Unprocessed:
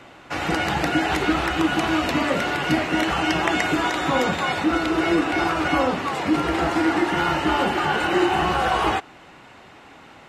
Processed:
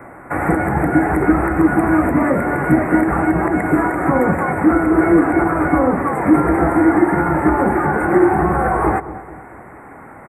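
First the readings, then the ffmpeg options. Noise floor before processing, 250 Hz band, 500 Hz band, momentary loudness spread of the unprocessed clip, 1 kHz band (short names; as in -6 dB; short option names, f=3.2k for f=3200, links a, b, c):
-47 dBFS, +8.5 dB, +7.0 dB, 2 LU, +4.0 dB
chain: -filter_complex "[0:a]acrossover=split=460[a][b];[b]alimiter=limit=-19dB:level=0:latency=1:release=306[c];[a][c]amix=inputs=2:normalize=0,asuperstop=centerf=4400:order=12:qfactor=0.71,equalizer=f=3.5k:t=o:w=1:g=-9.5,asplit=2[d][e];[e]adelay=219,lowpass=f=1.2k:p=1,volume=-14dB,asplit=2[f][g];[g]adelay=219,lowpass=f=1.2k:p=1,volume=0.5,asplit=2[h][i];[i]adelay=219,lowpass=f=1.2k:p=1,volume=0.5,asplit=2[j][k];[k]adelay=219,lowpass=f=1.2k:p=1,volume=0.5,asplit=2[l][m];[m]adelay=219,lowpass=f=1.2k:p=1,volume=0.5[n];[d][f][h][j][l][n]amix=inputs=6:normalize=0,volume=9dB"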